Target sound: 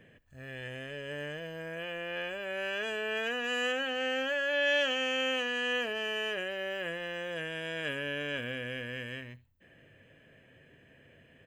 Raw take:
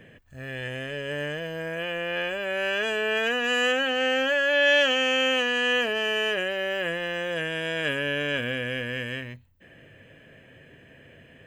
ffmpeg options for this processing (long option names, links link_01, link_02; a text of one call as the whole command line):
ffmpeg -i in.wav -af "aecho=1:1:73:0.075,volume=-8dB" out.wav